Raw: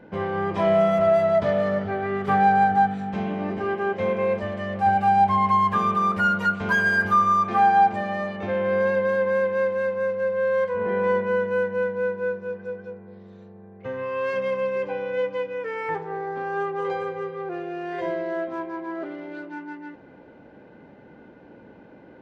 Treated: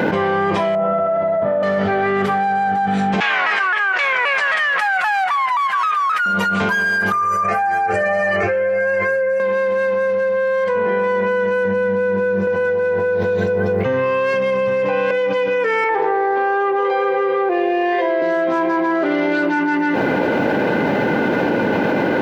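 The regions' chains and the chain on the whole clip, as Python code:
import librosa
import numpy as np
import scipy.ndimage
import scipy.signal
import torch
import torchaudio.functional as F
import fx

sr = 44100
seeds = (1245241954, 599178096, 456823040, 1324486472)

y = fx.chain(x, sr, fx.lowpass(hz=1000.0, slope=12),
    fx.room_flutter(wall_m=7.6, rt60_s=0.83), at=(0.75, 1.63))
y = fx.chain(y, sr, fx.highpass_res(hz=1500.0, q=2.0),
    fx.vibrato_shape(shape='saw_down', rate_hz=3.8, depth_cents=160.0), at=(3.2, 6.26))
y = fx.chain(y, sr, fx.fixed_phaser(hz=960.0, stages=6),
    fx.comb_cascade(direction='rising', hz=1.6), at=(7.12, 9.4))
y = fx.chain(y, sr, fx.low_shelf(hz=220.0, db=11.0),
    fx.echo_single(ms=820, db=-4.5), at=(11.65, 15.11))
y = fx.chain(y, sr, fx.highpass(hz=290.0, slope=24),
    fx.air_absorb(metres=180.0),
    fx.notch(hz=1400.0, q=9.1), at=(15.84, 18.22))
y = scipy.signal.sosfilt(scipy.signal.butter(2, 100.0, 'highpass', fs=sr, output='sos'), y)
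y = fx.tilt_eq(y, sr, slope=1.5)
y = fx.env_flatten(y, sr, amount_pct=100)
y = y * 10.0 ** (-4.0 / 20.0)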